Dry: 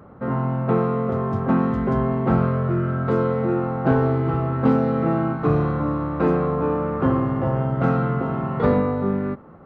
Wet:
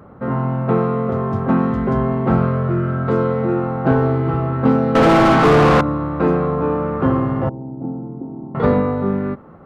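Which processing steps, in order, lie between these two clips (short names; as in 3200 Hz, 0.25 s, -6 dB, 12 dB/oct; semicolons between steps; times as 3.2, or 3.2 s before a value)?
4.95–5.81 overdrive pedal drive 38 dB, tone 1200 Hz, clips at -7 dBFS; 7.49–8.55 vocal tract filter u; gain +3 dB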